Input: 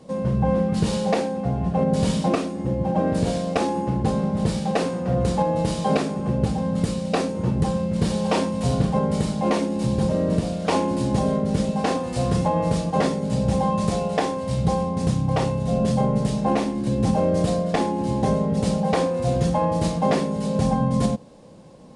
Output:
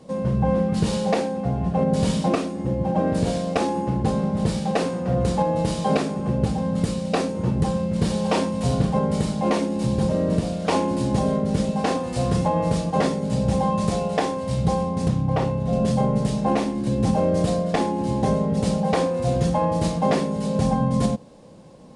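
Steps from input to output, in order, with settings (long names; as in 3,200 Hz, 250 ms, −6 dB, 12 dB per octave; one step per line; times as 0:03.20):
0:15.08–0:15.73: high-shelf EQ 4,200 Hz −11.5 dB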